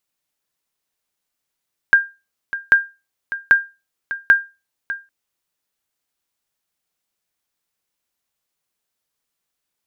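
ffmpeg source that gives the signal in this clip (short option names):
-f lavfi -i "aevalsrc='0.708*(sin(2*PI*1600*mod(t,0.79))*exp(-6.91*mod(t,0.79)/0.26)+0.2*sin(2*PI*1600*max(mod(t,0.79)-0.6,0))*exp(-6.91*max(mod(t,0.79)-0.6,0)/0.26))':d=3.16:s=44100"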